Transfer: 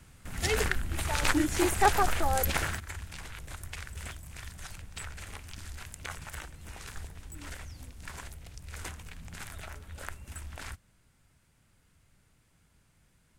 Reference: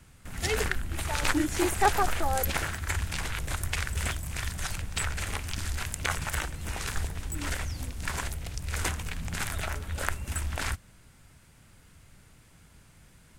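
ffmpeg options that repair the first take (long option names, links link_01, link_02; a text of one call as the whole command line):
ffmpeg -i in.wav -af "asetnsamples=nb_out_samples=441:pad=0,asendcmd='2.8 volume volume 10.5dB',volume=0dB" out.wav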